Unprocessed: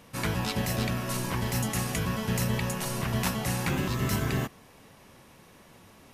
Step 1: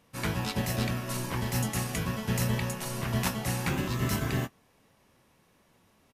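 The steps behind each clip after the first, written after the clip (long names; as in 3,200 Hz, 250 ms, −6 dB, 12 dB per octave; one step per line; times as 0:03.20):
double-tracking delay 24 ms −13.5 dB
expander for the loud parts 1.5 to 1, over −47 dBFS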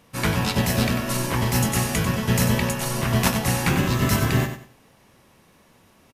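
repeating echo 95 ms, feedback 26%, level −9 dB
level +8.5 dB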